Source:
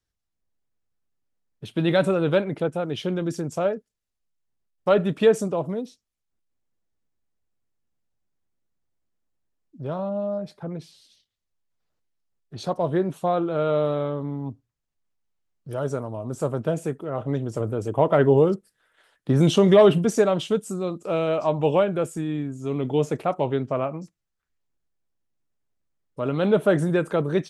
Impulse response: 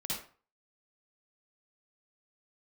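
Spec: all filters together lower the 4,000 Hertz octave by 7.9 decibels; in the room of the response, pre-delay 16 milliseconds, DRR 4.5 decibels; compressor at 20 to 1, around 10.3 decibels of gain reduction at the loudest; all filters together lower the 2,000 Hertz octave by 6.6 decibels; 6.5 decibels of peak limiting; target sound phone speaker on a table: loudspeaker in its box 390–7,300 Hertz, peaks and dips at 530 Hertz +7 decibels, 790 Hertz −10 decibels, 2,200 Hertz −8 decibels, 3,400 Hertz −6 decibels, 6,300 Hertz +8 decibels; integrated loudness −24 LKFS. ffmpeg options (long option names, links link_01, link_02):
-filter_complex "[0:a]equalizer=frequency=2000:width_type=o:gain=-6,equalizer=frequency=4000:width_type=o:gain=-3,acompressor=threshold=-21dB:ratio=20,alimiter=limit=-19dB:level=0:latency=1,asplit=2[link_01][link_02];[1:a]atrim=start_sample=2205,adelay=16[link_03];[link_02][link_03]afir=irnorm=-1:irlink=0,volume=-6.5dB[link_04];[link_01][link_04]amix=inputs=2:normalize=0,highpass=frequency=390:width=0.5412,highpass=frequency=390:width=1.3066,equalizer=frequency=530:width_type=q:width=4:gain=7,equalizer=frequency=790:width_type=q:width=4:gain=-10,equalizer=frequency=2200:width_type=q:width=4:gain=-8,equalizer=frequency=3400:width_type=q:width=4:gain=-6,equalizer=frequency=6300:width_type=q:width=4:gain=8,lowpass=frequency=7300:width=0.5412,lowpass=frequency=7300:width=1.3066,volume=5.5dB"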